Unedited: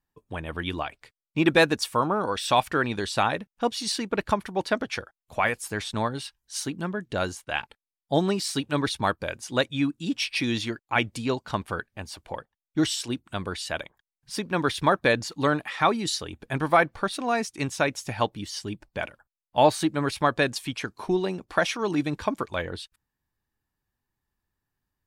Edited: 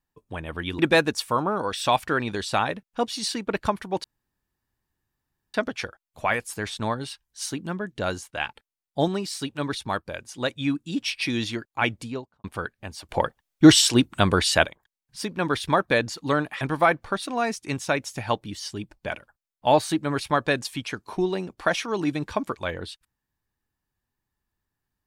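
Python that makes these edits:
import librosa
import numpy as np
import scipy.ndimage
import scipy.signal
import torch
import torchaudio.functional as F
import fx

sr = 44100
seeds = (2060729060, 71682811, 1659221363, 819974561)

y = fx.studio_fade_out(x, sr, start_s=11.03, length_s=0.55)
y = fx.edit(y, sr, fx.cut(start_s=0.79, length_s=0.64),
    fx.insert_room_tone(at_s=4.68, length_s=1.5),
    fx.clip_gain(start_s=8.22, length_s=1.42, db=-3.0),
    fx.clip_gain(start_s=12.23, length_s=1.56, db=11.5),
    fx.cut(start_s=15.75, length_s=0.77), tone=tone)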